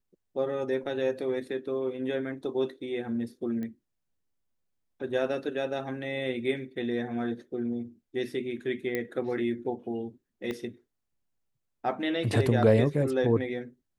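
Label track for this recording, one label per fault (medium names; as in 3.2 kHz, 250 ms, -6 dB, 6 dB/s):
3.630000	3.630000	pop -26 dBFS
8.950000	8.950000	pop -17 dBFS
10.510000	10.510000	pop -22 dBFS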